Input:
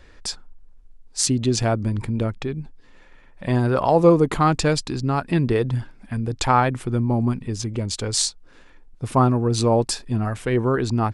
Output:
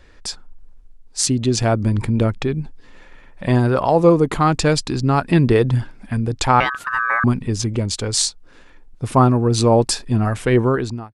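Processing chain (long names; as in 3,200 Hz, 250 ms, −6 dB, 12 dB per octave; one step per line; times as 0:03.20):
fade-out on the ending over 0.58 s
automatic gain control gain up to 6.5 dB
0:06.60–0:07.24: ring modulation 1,400 Hz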